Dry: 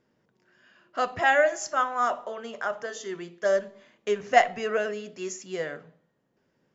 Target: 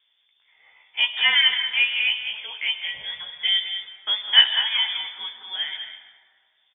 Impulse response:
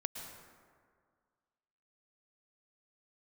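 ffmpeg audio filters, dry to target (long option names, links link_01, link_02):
-filter_complex "[0:a]lowpass=frequency=3100:width_type=q:width=0.5098,lowpass=frequency=3100:width_type=q:width=0.6013,lowpass=frequency=3100:width_type=q:width=0.9,lowpass=frequency=3100:width_type=q:width=2.563,afreqshift=-3700,asplit=2[link_01][link_02];[link_02]adelay=14,volume=-7dB[link_03];[link_01][link_03]amix=inputs=2:normalize=0,aecho=1:1:202:0.355,asplit=2[link_04][link_05];[1:a]atrim=start_sample=2205,adelay=16[link_06];[link_05][link_06]afir=irnorm=-1:irlink=0,volume=-5.5dB[link_07];[link_04][link_07]amix=inputs=2:normalize=0,volume=1.5dB"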